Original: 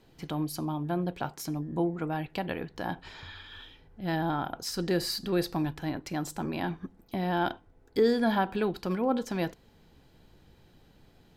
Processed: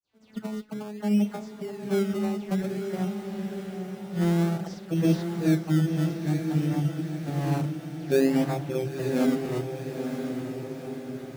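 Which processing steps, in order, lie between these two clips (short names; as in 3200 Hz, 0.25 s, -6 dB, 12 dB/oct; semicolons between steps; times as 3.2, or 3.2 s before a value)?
vocoder on a gliding note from A3, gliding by -12 st; bell 1000 Hz -12.5 dB 0.25 oct; dispersion lows, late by 0.129 s, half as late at 2800 Hz; in parallel at -3 dB: decimation with a swept rate 21×, swing 60% 0.55 Hz; on the sum: diffused feedback echo 0.943 s, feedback 57%, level -6 dB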